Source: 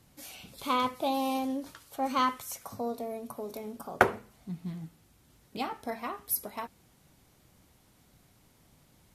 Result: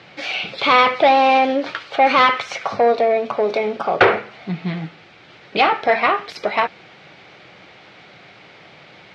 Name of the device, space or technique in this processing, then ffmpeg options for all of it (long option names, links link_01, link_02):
overdrive pedal into a guitar cabinet: -filter_complex "[0:a]asplit=2[link_01][link_02];[link_02]highpass=frequency=720:poles=1,volume=32dB,asoftclip=type=tanh:threshold=-2dB[link_03];[link_01][link_03]amix=inputs=2:normalize=0,lowpass=frequency=2700:poles=1,volume=-6dB,highpass=110,equalizer=frequency=250:width_type=q:width=4:gain=-10,equalizer=frequency=1000:width_type=q:width=4:gain=-7,equalizer=frequency=2300:width_type=q:width=4:gain=5,lowpass=frequency=4300:width=0.5412,lowpass=frequency=4300:width=1.3066,volume=1.5dB"